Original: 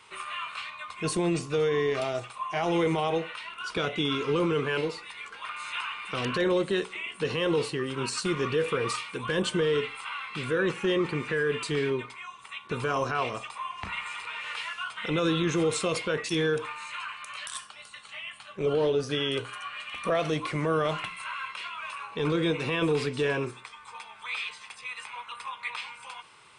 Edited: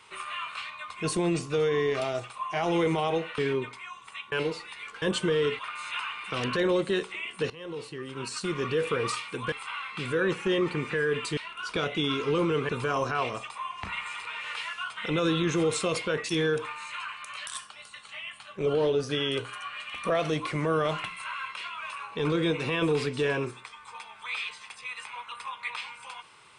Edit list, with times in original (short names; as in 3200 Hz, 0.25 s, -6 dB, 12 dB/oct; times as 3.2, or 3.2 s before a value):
3.38–4.7 swap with 11.75–12.69
7.31–8.71 fade in, from -18.5 dB
9.33–9.9 move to 5.4